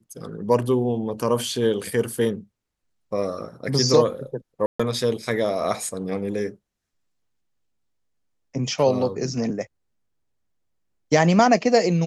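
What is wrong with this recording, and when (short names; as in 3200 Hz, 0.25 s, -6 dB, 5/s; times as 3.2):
4.66–4.79 gap 0.135 s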